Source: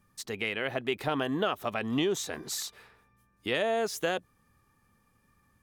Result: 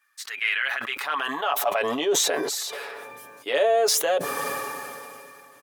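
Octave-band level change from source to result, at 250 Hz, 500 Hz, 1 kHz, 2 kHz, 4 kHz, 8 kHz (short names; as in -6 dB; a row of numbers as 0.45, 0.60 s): -2.5, +7.0, +9.0, +8.0, +8.0, +12.5 dB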